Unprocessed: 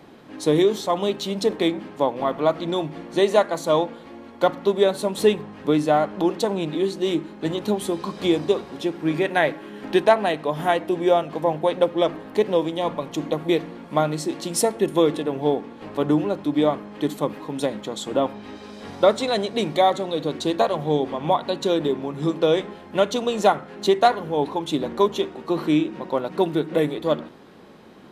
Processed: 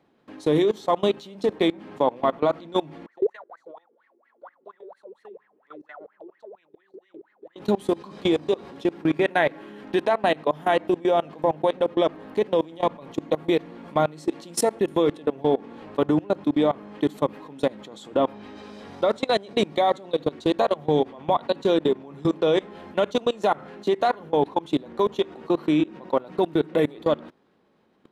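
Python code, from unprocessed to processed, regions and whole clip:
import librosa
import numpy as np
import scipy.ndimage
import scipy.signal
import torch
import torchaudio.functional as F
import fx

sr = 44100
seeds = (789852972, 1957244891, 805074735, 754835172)

y = fx.chain(x, sr, fx.high_shelf(hz=4600.0, db=11.0),
    fx.wah_lfo(hz=4.3, low_hz=370.0, high_hz=2000.0, q=18.0), at=(3.06, 7.56))
y = fx.low_shelf(y, sr, hz=150.0, db=-3.0)
y = fx.level_steps(y, sr, step_db=23)
y = fx.high_shelf(y, sr, hz=5400.0, db=-7.0)
y = F.gain(torch.from_numpy(y), 4.5).numpy()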